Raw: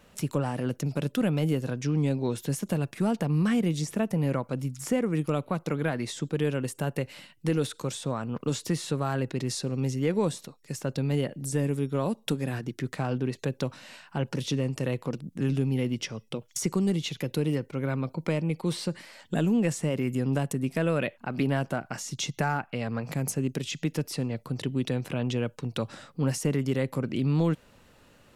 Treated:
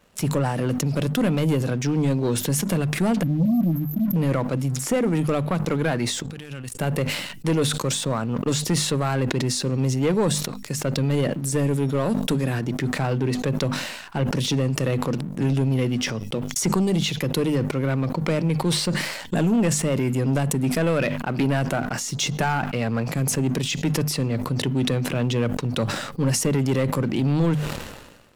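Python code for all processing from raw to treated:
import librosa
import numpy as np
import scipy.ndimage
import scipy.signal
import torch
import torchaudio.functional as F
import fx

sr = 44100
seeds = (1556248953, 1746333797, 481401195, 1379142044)

y = fx.chain(x, sr, fx.brickwall_bandstop(low_hz=340.0, high_hz=12000.0),
    fx.peak_eq(hz=12000.0, db=14.0, octaves=0.44), at=(3.23, 4.16))
y = fx.chain(y, sr, fx.level_steps(step_db=18),
    fx.peak_eq(hz=450.0, db=-12.5, octaves=2.1), at=(6.22, 6.72))
y = fx.hum_notches(y, sr, base_hz=50, count=5)
y = fx.leveller(y, sr, passes=2)
y = fx.sustainer(y, sr, db_per_s=48.0)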